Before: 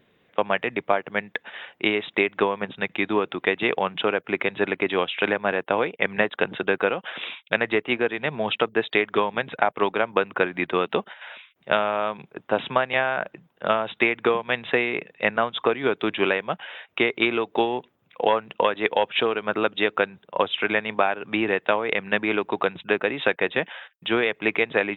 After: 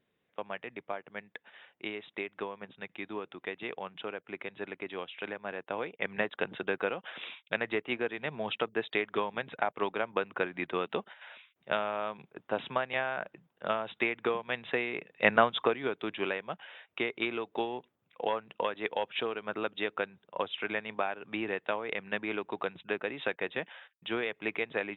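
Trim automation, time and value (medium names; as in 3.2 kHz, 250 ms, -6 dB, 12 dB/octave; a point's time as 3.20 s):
5.38 s -16 dB
6.19 s -9.5 dB
15.10 s -9.5 dB
15.33 s +1 dB
15.92 s -11 dB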